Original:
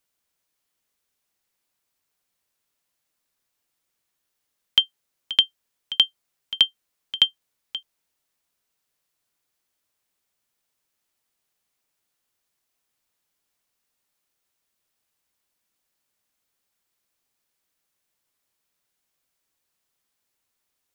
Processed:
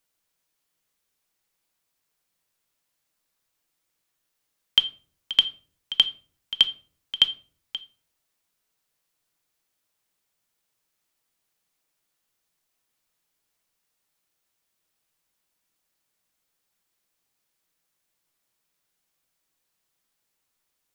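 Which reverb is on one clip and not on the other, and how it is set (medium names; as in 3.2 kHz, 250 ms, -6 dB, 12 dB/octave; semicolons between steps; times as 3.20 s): simulated room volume 410 m³, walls furnished, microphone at 0.63 m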